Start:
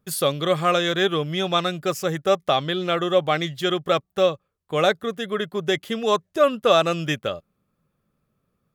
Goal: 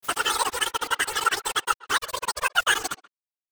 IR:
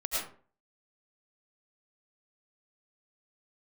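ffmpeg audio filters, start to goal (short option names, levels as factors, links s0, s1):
-filter_complex "[0:a]aeval=exprs='val(0)*gte(abs(val(0)),0.0794)':c=same,asetrate=109809,aresample=44100,afftfilt=real='hypot(re,im)*cos(2*PI*random(0))':imag='hypot(re,im)*sin(2*PI*random(1))':win_size=512:overlap=0.75,asplit=2[s0][s1];[s1]adelay=130,highpass=300,lowpass=3400,asoftclip=type=hard:threshold=0.112,volume=0.1[s2];[s0][s2]amix=inputs=2:normalize=0,volume=1.41"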